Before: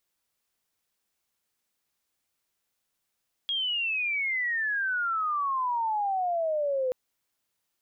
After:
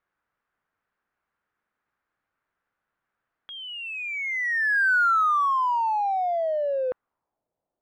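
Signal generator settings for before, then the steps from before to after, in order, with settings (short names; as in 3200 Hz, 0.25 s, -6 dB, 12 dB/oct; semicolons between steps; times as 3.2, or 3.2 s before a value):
chirp logarithmic 3300 Hz -> 500 Hz -26 dBFS -> -24.5 dBFS 3.43 s
low-pass sweep 1500 Hz -> 660 Hz, 6.92–7.45; in parallel at -10 dB: soft clip -33.5 dBFS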